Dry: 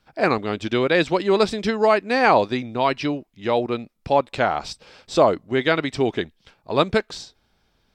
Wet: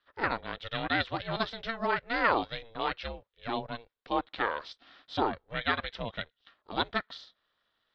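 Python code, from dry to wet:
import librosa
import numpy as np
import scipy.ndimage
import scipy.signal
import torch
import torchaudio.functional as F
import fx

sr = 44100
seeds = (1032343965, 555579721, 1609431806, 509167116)

y = fx.cabinet(x, sr, low_hz=400.0, low_slope=12, high_hz=3900.0, hz=(400.0, 640.0, 1000.0, 1600.0, 2400.0, 3500.0), db=(-7, -5, -4, 5, -7, 6))
y = y * np.sin(2.0 * np.pi * 230.0 * np.arange(len(y)) / sr)
y = y * librosa.db_to_amplitude(-5.0)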